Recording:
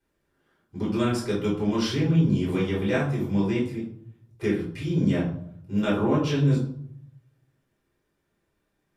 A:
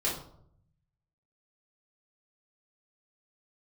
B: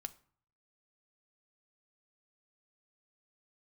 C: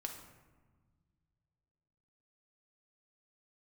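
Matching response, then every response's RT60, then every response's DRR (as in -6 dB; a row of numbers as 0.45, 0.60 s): A; 0.70, 0.50, 1.4 s; -6.0, 9.0, 2.5 dB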